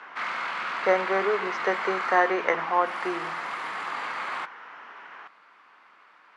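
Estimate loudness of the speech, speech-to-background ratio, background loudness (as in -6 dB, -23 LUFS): -26.5 LUFS, 5.0 dB, -31.5 LUFS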